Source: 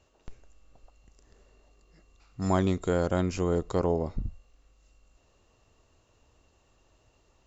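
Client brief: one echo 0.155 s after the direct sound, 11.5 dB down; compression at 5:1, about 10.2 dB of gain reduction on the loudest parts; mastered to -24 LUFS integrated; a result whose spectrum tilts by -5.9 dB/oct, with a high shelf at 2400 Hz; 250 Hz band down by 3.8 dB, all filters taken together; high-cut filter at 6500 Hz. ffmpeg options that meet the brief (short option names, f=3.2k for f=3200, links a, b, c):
-af "lowpass=6.5k,equalizer=f=250:t=o:g=-6,highshelf=f=2.4k:g=6,acompressor=threshold=-34dB:ratio=5,aecho=1:1:155:0.266,volume=15dB"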